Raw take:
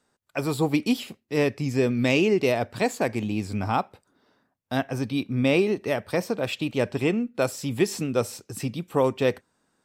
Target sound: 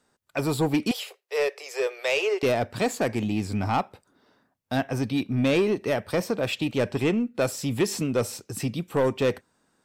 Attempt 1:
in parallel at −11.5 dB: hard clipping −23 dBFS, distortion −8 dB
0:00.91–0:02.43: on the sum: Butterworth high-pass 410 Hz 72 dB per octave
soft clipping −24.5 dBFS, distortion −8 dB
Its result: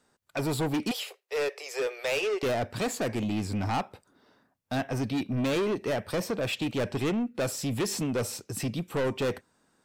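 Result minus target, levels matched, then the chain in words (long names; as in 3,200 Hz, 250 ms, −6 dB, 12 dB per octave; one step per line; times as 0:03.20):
soft clipping: distortion +9 dB
in parallel at −11.5 dB: hard clipping −23 dBFS, distortion −8 dB
0:00.91–0:02.43: on the sum: Butterworth high-pass 410 Hz 72 dB per octave
soft clipping −15 dBFS, distortion −18 dB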